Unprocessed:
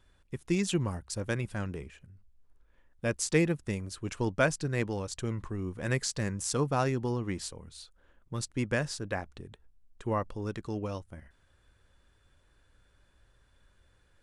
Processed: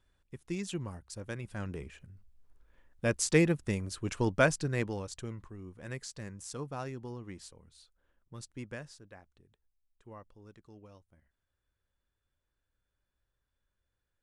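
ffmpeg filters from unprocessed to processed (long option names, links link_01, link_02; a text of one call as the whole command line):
ffmpeg -i in.wav -af "volume=1dB,afade=type=in:start_time=1.41:duration=0.57:silence=0.354813,afade=type=out:start_time=4.44:duration=1.04:silence=0.251189,afade=type=out:start_time=8.57:duration=0.53:silence=0.398107" out.wav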